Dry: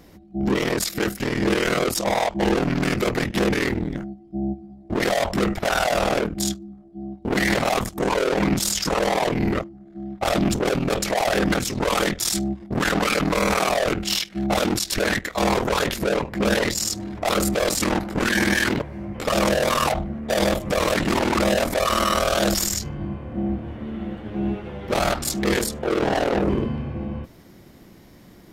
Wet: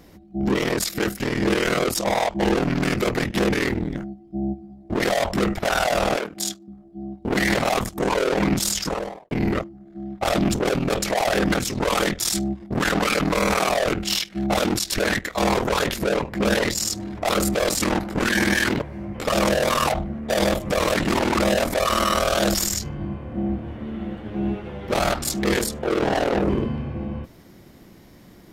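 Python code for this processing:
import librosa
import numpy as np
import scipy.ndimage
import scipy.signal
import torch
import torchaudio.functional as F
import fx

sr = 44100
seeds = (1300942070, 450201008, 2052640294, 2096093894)

y = fx.highpass(x, sr, hz=660.0, slope=6, at=(6.16, 6.68))
y = fx.studio_fade_out(y, sr, start_s=8.71, length_s=0.6)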